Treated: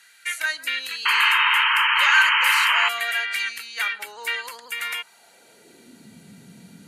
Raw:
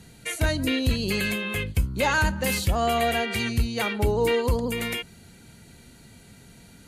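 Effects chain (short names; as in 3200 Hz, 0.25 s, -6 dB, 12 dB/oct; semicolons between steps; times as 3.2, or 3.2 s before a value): high-pass sweep 1600 Hz -> 180 Hz, 4.75–6.16; painted sound noise, 1.05–2.89, 860–3200 Hz -19 dBFS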